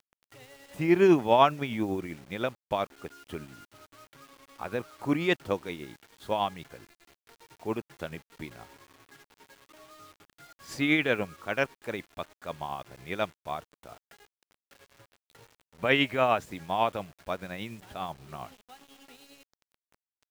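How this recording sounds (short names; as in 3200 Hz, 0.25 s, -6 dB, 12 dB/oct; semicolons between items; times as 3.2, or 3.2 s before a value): tremolo triangle 10 Hz, depth 50%; a quantiser's noise floor 10-bit, dither none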